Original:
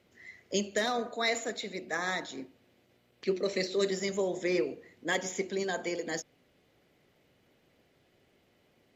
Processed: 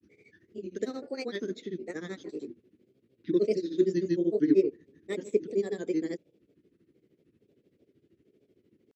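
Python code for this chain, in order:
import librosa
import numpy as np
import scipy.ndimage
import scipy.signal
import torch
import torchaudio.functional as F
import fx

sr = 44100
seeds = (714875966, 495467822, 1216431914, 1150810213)

y = scipy.signal.sosfilt(scipy.signal.butter(2, 78.0, 'highpass', fs=sr, output='sos'), x)
y = fx.low_shelf_res(y, sr, hz=530.0, db=12.0, q=3.0)
y = fx.granulator(y, sr, seeds[0], grain_ms=100.0, per_s=13.0, spray_ms=100.0, spread_st=3)
y = y * librosa.db_to_amplitude(-9.0)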